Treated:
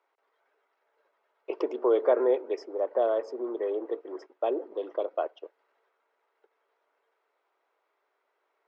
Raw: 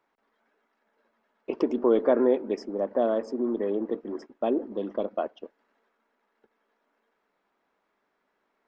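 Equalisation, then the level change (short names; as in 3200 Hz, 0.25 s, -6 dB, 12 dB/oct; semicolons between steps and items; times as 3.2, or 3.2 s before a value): steep high-pass 370 Hz 36 dB/oct; air absorption 76 m; notch 1700 Hz, Q 16; 0.0 dB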